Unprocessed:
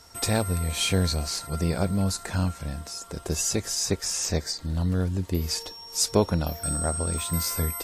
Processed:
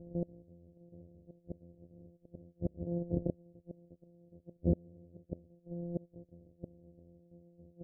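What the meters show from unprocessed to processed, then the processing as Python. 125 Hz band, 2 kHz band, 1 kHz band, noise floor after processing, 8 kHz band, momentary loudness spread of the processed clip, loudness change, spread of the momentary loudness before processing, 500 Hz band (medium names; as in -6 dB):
-14.5 dB, under -40 dB, under -25 dB, -70 dBFS, under -40 dB, 23 LU, -13.5 dB, 7 LU, -13.5 dB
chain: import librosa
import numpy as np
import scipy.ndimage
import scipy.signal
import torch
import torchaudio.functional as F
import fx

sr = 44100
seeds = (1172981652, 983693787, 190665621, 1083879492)

y = np.r_[np.sort(x[:len(x) // 256 * 256].reshape(-1, 256), axis=1).ravel(), x[len(x) // 256 * 256:]]
y = fx.low_shelf(y, sr, hz=82.0, db=-5.5)
y = fx.gate_flip(y, sr, shuts_db=-20.0, range_db=-34)
y = scipy.signal.sosfilt(scipy.signal.ellip(4, 1.0, 50, 570.0, 'lowpass', fs=sr, output='sos'), y)
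y = y * 10.0 ** (4.5 / 20.0)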